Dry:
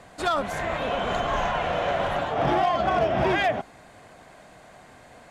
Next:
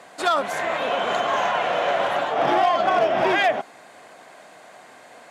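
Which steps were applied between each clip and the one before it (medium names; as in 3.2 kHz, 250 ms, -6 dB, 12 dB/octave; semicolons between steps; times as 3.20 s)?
Bessel high-pass 370 Hz, order 2; trim +4.5 dB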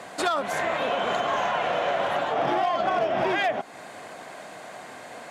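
bass shelf 200 Hz +6.5 dB; compression 2.5:1, threshold -31 dBFS, peak gain reduction 11 dB; trim +4.5 dB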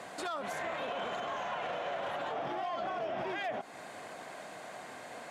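peak limiter -24 dBFS, peak gain reduction 10.5 dB; trim -5 dB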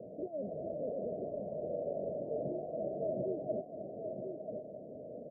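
rippled Chebyshev low-pass 640 Hz, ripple 3 dB; on a send: delay 989 ms -6 dB; on the sum: trim +5 dB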